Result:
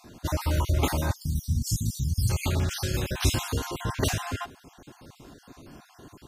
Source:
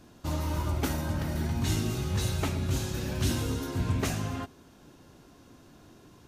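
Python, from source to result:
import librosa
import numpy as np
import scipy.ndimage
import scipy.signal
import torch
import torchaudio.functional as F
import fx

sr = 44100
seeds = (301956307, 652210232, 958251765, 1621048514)

y = fx.spec_dropout(x, sr, seeds[0], share_pct=37)
y = fx.cheby2_bandstop(y, sr, low_hz=430.0, high_hz=2500.0, order=4, stop_db=40, at=(1.12, 2.29), fade=0.02)
y = fx.dynamic_eq(y, sr, hz=220.0, q=1.2, threshold_db=-47.0, ratio=4.0, max_db=-7)
y = y * 10.0 ** (7.5 / 20.0)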